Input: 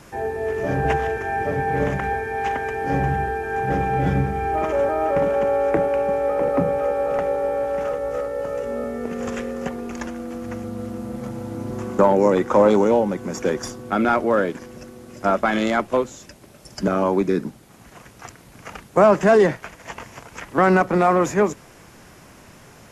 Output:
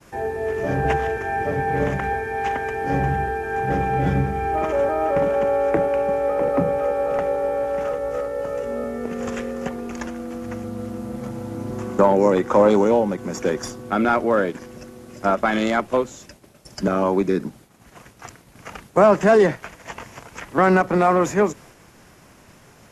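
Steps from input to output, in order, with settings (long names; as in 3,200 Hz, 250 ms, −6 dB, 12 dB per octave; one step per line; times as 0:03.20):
downward expander −42 dBFS
every ending faded ahead of time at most 440 dB per second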